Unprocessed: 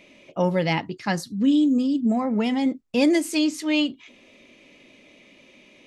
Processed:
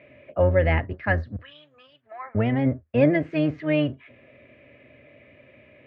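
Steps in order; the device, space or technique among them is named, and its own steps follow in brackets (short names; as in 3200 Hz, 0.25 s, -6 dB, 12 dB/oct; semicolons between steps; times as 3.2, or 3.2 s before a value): 1.36–2.35 HPF 1000 Hz 24 dB/oct; sub-octave bass pedal (octaver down 1 oct, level -1 dB; speaker cabinet 62–2300 Hz, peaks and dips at 81 Hz +7 dB, 180 Hz -9 dB, 340 Hz -4 dB, 600 Hz +8 dB, 890 Hz -7 dB, 1700 Hz +7 dB)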